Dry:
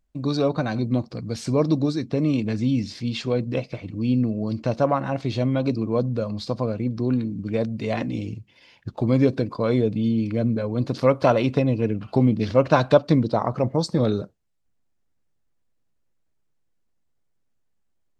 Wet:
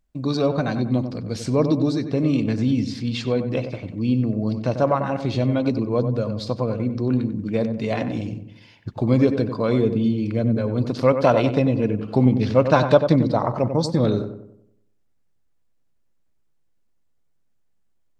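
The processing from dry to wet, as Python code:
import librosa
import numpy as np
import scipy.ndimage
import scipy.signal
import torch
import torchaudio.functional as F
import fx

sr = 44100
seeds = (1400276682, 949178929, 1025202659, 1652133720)

y = fx.echo_filtered(x, sr, ms=94, feedback_pct=46, hz=1700.0, wet_db=-8.0)
y = y * 10.0 ** (1.0 / 20.0)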